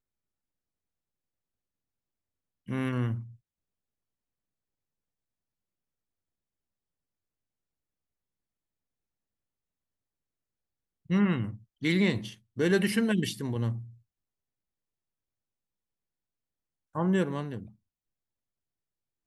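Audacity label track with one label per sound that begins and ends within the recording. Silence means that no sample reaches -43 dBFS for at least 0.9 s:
2.680000	3.310000	sound
11.100000	13.900000	sound
16.950000	17.670000	sound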